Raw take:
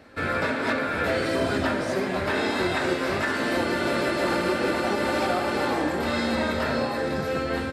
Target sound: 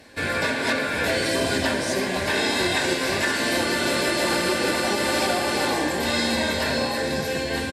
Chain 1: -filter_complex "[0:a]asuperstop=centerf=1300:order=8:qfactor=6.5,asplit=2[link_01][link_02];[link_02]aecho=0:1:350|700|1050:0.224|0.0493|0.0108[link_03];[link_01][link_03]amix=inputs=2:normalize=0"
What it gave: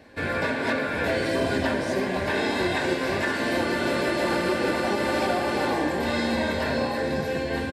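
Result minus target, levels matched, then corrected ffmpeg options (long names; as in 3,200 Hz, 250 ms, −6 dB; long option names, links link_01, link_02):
8,000 Hz band −9.5 dB
-filter_complex "[0:a]asuperstop=centerf=1300:order=8:qfactor=6.5,equalizer=frequency=9100:width_type=o:width=2.7:gain=12.5,asplit=2[link_01][link_02];[link_02]aecho=0:1:350|700|1050:0.224|0.0493|0.0108[link_03];[link_01][link_03]amix=inputs=2:normalize=0"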